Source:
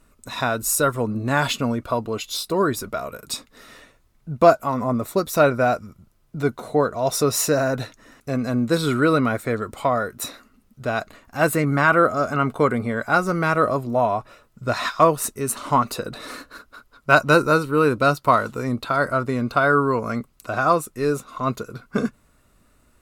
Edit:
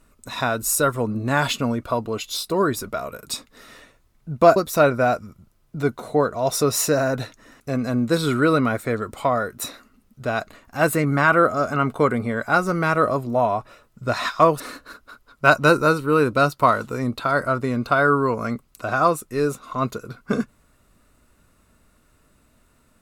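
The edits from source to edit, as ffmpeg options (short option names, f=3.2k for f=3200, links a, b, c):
-filter_complex "[0:a]asplit=3[a][b][c];[a]atrim=end=4.562[d];[b]atrim=start=5.158:end=15.202[e];[c]atrim=start=16.248[f];[d][e]acrossfade=d=0.004:c1=hsin:c2=hsin[g];[g][f]acrossfade=d=0.004:c1=hsin:c2=hsin"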